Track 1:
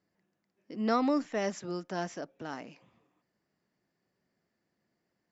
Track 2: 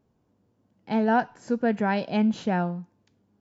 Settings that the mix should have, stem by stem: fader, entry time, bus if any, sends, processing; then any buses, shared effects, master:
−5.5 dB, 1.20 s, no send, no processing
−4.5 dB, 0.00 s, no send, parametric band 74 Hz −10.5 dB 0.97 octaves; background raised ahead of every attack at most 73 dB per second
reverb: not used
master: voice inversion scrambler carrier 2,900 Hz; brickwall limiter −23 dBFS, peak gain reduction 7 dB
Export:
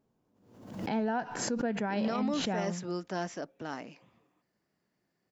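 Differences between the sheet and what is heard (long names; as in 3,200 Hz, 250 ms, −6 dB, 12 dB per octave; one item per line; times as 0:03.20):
stem 1 −5.5 dB → +1.0 dB
master: missing voice inversion scrambler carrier 2,900 Hz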